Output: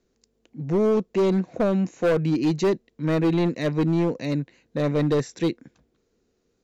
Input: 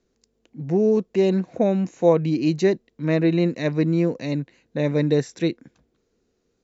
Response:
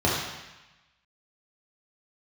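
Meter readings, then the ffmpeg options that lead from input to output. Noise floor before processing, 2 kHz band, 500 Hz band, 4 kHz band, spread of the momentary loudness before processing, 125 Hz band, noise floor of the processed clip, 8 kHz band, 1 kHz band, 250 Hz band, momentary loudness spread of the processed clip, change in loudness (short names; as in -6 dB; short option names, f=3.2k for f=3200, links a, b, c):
-71 dBFS, -1.0 dB, -2.0 dB, -1.0 dB, 8 LU, -1.5 dB, -71 dBFS, n/a, +0.5 dB, -1.5 dB, 6 LU, -2.0 dB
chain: -af "asoftclip=type=hard:threshold=-16.5dB"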